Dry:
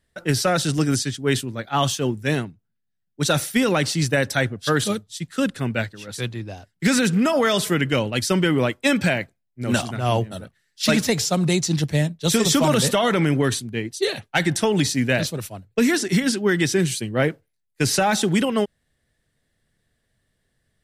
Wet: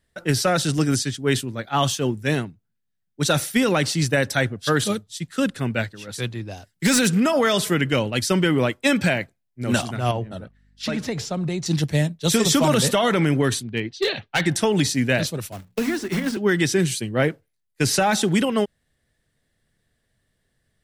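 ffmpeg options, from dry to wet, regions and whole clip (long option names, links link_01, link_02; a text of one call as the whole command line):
ffmpeg -i in.wav -filter_complex "[0:a]asettb=1/sr,asplit=3[link_01][link_02][link_03];[link_01]atrim=end=6.514[link_04];[link_02]atrim=start=6.51:end=7.2,asetpts=PTS-STARTPTS,afade=type=in:duration=0.004:curve=qsin,afade=type=out:start_time=0.686:duration=0.004:curve=qsin,highshelf=frequency=4400:gain=7.5,volume=12dB,asoftclip=hard,volume=-12dB[link_05];[link_03]atrim=start=7.196[link_06];[link_04][link_05]acrossfade=duration=0.004:curve1=hsin:curve2=qsin[link_07];[link_07][link_06]acrossfade=duration=0.004:curve1=qsin:curve2=hsin,asettb=1/sr,asplit=3[link_08][link_09][link_10];[link_08]atrim=end=10.114[link_11];[link_09]atrim=start=10.11:end=11.66,asetpts=PTS-STARTPTS,afade=type=in:duration=0.004:curve=qsin,afade=type=out:start_time=1.546:duration=0.004:curve=qsin,aemphasis=mode=reproduction:type=75kf,acompressor=threshold=-23dB:ratio=3:attack=3.2:release=140:knee=1:detection=peak,aeval=exprs='val(0)+0.00141*(sin(2*PI*50*n/s)+sin(2*PI*2*50*n/s)/2+sin(2*PI*3*50*n/s)/3+sin(2*PI*4*50*n/s)/4+sin(2*PI*5*50*n/s)/5)':channel_layout=same[link_12];[link_10]atrim=start=11.656[link_13];[link_11][link_12]acrossfade=duration=0.004:curve1=hsin:curve2=qsin[link_14];[link_14][link_13]acrossfade=duration=0.004:curve1=qsin:curve2=hsin,asettb=1/sr,asplit=3[link_15][link_16][link_17];[link_15]atrim=end=13.634[link_18];[link_16]atrim=start=13.63:end=14.46,asetpts=PTS-STARTPTS,afade=type=in:duration=0.004:curve=qsin,afade=type=out:start_time=0.826:duration=0.004:curve=qsin,lowpass=frequency=4000:width=0.5412,lowpass=frequency=4000:width=1.3066,highshelf=frequency=3000:gain=7.5,asoftclip=type=hard:threshold=-15dB[link_19];[link_17]atrim=start=14.456[link_20];[link_18][link_19]acrossfade=duration=0.004:curve1=hsin:curve2=qsin[link_21];[link_21][link_20]acrossfade=duration=0.004:curve1=qsin:curve2=hsin,asettb=1/sr,asplit=3[link_22][link_23][link_24];[link_22]atrim=end=15.524[link_25];[link_23]atrim=start=15.52:end=16.37,asetpts=PTS-STARTPTS,afade=type=in:duration=0.004:curve=qsin,afade=type=out:start_time=0.846:duration=0.004:curve=qsin,acrusher=bits=2:mode=log:mix=0:aa=0.000001,acrossover=split=320|2200|5200[link_26][link_27][link_28][link_29];[link_26]acompressor=threshold=-23dB:ratio=3[link_30];[link_27]acompressor=threshold=-28dB:ratio=3[link_31];[link_28]acompressor=threshold=-42dB:ratio=3[link_32];[link_29]acompressor=threshold=-44dB:ratio=3[link_33];[link_30][link_31][link_32][link_33]amix=inputs=4:normalize=0,bandreject=frequency=60:width_type=h:width=6,bandreject=frequency=120:width_type=h:width=6,bandreject=frequency=180:width_type=h:width=6,bandreject=frequency=240:width_type=h:width=6[link_34];[link_24]atrim=start=16.366[link_35];[link_25][link_34]acrossfade=duration=0.004:curve1=hsin:curve2=qsin[link_36];[link_36][link_35]acrossfade=duration=0.004:curve1=qsin:curve2=hsin" out.wav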